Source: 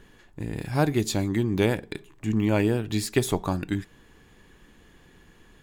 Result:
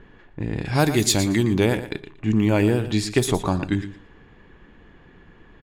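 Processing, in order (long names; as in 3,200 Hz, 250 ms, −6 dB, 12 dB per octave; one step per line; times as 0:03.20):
0:00.65–0:01.53: high-shelf EQ 2,300 Hz +9 dB
low-pass that shuts in the quiet parts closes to 2,200 Hz, open at −18 dBFS
in parallel at −2 dB: brickwall limiter −16 dBFS, peak gain reduction 8.5 dB
on the sum: repeating echo 116 ms, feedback 17%, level −12 dB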